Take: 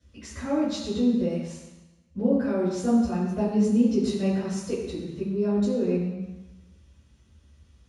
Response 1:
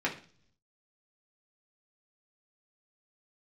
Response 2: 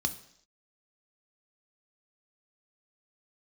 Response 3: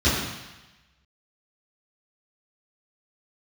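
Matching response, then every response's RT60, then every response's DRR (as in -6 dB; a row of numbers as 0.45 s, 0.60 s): 3; 0.45 s, no single decay rate, 1.0 s; -4.0 dB, 8.0 dB, -13.0 dB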